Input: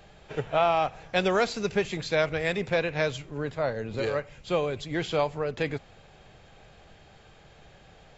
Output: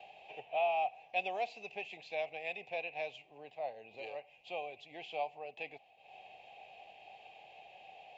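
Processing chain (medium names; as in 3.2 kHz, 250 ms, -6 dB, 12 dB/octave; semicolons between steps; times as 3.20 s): upward compressor, threshold -31 dBFS; expander -43 dBFS; two resonant band-passes 1.4 kHz, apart 1.8 oct; trim -2.5 dB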